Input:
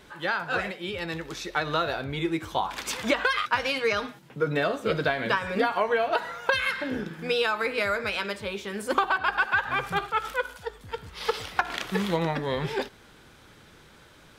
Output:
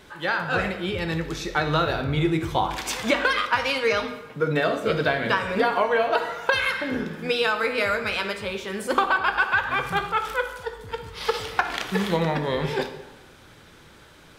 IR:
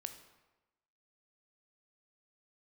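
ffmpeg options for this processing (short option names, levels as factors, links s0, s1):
-filter_complex "[0:a]asettb=1/sr,asplit=3[s0][s1][s2];[s0]atrim=end=0.404[s3];[s1]atrim=start=0.4:end=2.76,asetpts=PTS-STARTPTS,afade=t=in:d=0.004:c=qsin,afade=t=out:st=2.356:d=0.004:c=qsin,lowshelf=f=230:g=9[s4];[s2]atrim=start=2.756[s5];[s3][s4]acrossfade=d=0.004:c1=hsin:c2=qsin[s6];[s6][s5]acrossfade=d=0.004:c1=qsin:c2=hsin[s7];[1:a]atrim=start_sample=2205[s8];[s7][s8]afir=irnorm=-1:irlink=0,volume=2"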